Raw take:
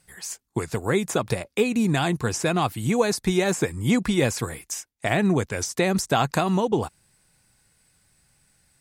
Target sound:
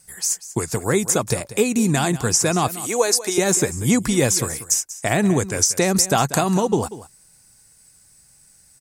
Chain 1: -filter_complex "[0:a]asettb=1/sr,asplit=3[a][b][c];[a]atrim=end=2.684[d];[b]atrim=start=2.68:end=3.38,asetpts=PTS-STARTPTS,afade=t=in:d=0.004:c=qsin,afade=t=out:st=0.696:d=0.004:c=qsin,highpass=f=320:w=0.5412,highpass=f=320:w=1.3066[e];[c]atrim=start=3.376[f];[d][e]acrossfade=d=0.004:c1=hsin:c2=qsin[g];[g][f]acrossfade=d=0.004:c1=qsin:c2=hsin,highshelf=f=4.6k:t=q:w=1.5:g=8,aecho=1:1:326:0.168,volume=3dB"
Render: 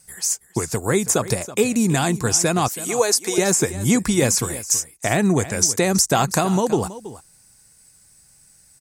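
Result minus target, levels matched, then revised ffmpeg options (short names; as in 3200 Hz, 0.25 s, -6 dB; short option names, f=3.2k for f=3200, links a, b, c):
echo 0.136 s late
-filter_complex "[0:a]asettb=1/sr,asplit=3[a][b][c];[a]atrim=end=2.684[d];[b]atrim=start=2.68:end=3.38,asetpts=PTS-STARTPTS,afade=t=in:d=0.004:c=qsin,afade=t=out:st=0.696:d=0.004:c=qsin,highpass=f=320:w=0.5412,highpass=f=320:w=1.3066[e];[c]atrim=start=3.376[f];[d][e]acrossfade=d=0.004:c1=hsin:c2=qsin[g];[g][f]acrossfade=d=0.004:c1=qsin:c2=hsin,highshelf=f=4.6k:t=q:w=1.5:g=8,aecho=1:1:190:0.168,volume=3dB"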